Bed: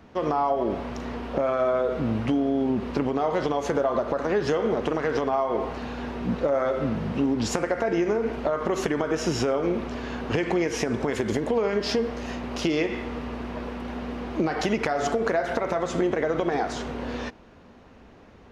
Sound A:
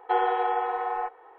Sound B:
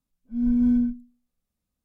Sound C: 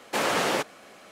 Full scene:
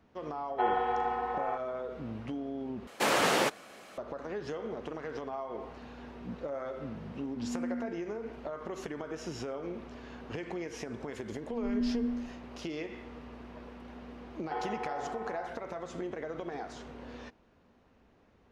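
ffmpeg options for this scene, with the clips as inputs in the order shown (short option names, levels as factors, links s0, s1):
-filter_complex "[1:a]asplit=2[s0][s1];[2:a]asplit=2[s2][s3];[0:a]volume=0.2[s4];[s2]asuperpass=centerf=640:order=4:qfactor=0.63[s5];[s3]aecho=1:1:170:0.708[s6];[s4]asplit=2[s7][s8];[s7]atrim=end=2.874[s9];[3:a]atrim=end=1.11,asetpts=PTS-STARTPTS,volume=0.841[s10];[s8]atrim=start=3.976[s11];[s0]atrim=end=1.38,asetpts=PTS-STARTPTS,volume=0.562,afade=t=in:d=0.004:c=hsin,afade=t=out:st=1.376:d=0.004:c=hsin,adelay=490[s12];[s5]atrim=end=1.84,asetpts=PTS-STARTPTS,volume=0.355,afade=t=in:d=0.004:c=hsin,afade=t=out:st=1.836:d=0.004:c=hsin,adelay=7010[s13];[s6]atrim=end=1.84,asetpts=PTS-STARTPTS,volume=0.224,afade=t=in:d=0.004:c=hsin,afade=t=out:st=1.836:d=0.004:c=hsin,adelay=11190[s14];[s1]atrim=end=1.38,asetpts=PTS-STARTPTS,volume=0.224,afade=t=in:d=0.004:c=hsin,afade=t=out:st=1.376:d=0.004:c=hsin,adelay=14410[s15];[s9][s10]acrossfade=d=0.004:c1=hsin:c2=hsin[s16];[s16][s11]acrossfade=d=0.004:c1=hsin:c2=hsin[s17];[s17][s12][s13][s14][s15]amix=inputs=5:normalize=0"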